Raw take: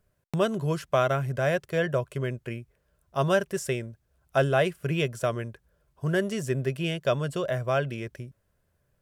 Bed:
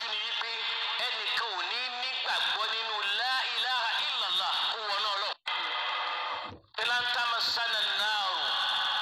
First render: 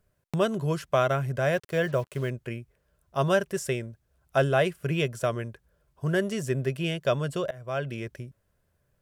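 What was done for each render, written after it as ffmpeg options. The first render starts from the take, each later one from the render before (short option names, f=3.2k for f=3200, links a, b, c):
-filter_complex "[0:a]asettb=1/sr,asplit=3[a][b][c];[a]atrim=end=1.534[d];[b]atrim=start=1.53:end=2.3,asetpts=PTS-STARTPTS,afade=t=in:d=0.004:c=qsin,afade=t=out:st=0.766:d=0.004:c=qsin,acrusher=bits=7:mix=0:aa=0.5[e];[c]atrim=start=2.296[f];[d][e]acrossfade=d=0.004:c1=hsin:c2=qsin[g];[g][f]acrossfade=d=0.004:c1=qsin:c2=hsin,asplit=2[h][i];[h]atrim=end=7.51,asetpts=PTS-STARTPTS,afade=t=out:st=7.506:d=0.004:c=hsin:silence=0.0668344[j];[i]atrim=start=7.51,asetpts=PTS-STARTPTS,afade=t=in:d=0.46:silence=0.0668344[k];[j][k]concat=n=2:v=0:a=1"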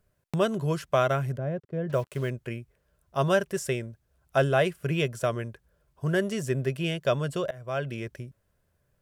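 -filter_complex "[0:a]asettb=1/sr,asplit=3[a][b][c];[a]atrim=end=1.374[d];[b]atrim=start=1.37:end=1.9,asetpts=PTS-STARTPTS,afade=t=in:d=0.004:c=qsin,afade=t=out:st=0.526:d=0.004:c=qsin,bandpass=f=190:t=q:w=0.85[e];[c]atrim=start=1.896[f];[d][e]acrossfade=d=0.004:c1=hsin:c2=qsin[g];[g][f]acrossfade=d=0.004:c1=qsin:c2=hsin"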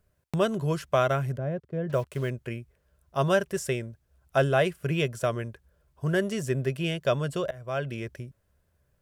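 -af "equalizer=f=70:t=o:w=0.24:g=10"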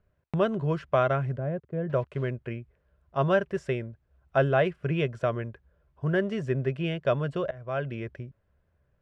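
-af "lowpass=2.5k"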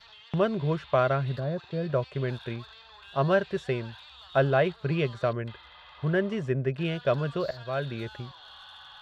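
-filter_complex "[1:a]volume=-19dB[a];[0:a][a]amix=inputs=2:normalize=0"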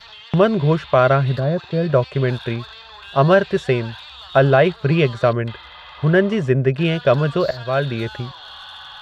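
-af "volume=11dB,alimiter=limit=-3dB:level=0:latency=1"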